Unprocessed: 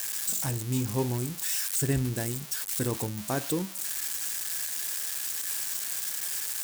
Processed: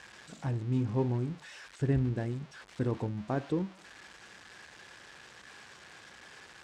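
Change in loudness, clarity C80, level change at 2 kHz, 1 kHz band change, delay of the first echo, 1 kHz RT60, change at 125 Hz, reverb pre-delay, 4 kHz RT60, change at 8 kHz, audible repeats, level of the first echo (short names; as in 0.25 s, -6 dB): -4.0 dB, none, -6.5 dB, -3.5 dB, none, none, -0.5 dB, none, none, -28.0 dB, none, none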